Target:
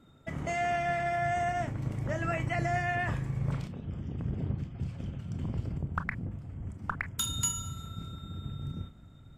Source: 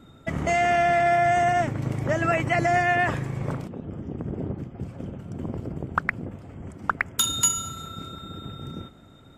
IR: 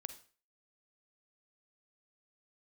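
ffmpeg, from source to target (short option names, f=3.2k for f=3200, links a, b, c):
-filter_complex "[0:a]asettb=1/sr,asplit=3[a][b][c];[a]atrim=end=3.524[d];[b]atrim=start=3.52:end=5.78,asetpts=PTS-STARTPTS,afade=t=in:d=0.004:c=qsin,afade=t=out:st=2.256:d=0.004:c=qsin,equalizer=f=3.8k:t=o:w=2.3:g=11.5[e];[c]atrim=start=5.776[f];[d][e]acrossfade=d=0.004:c1=hsin:c2=qsin[g];[g][f]acrossfade=d=0.004:c1=qsin:c2=hsin[h];[1:a]atrim=start_sample=2205,afade=t=out:st=0.14:d=0.01,atrim=end_sample=6615,asetrate=79380,aresample=44100[i];[h][i]afir=irnorm=-1:irlink=0,asubboost=boost=4:cutoff=180"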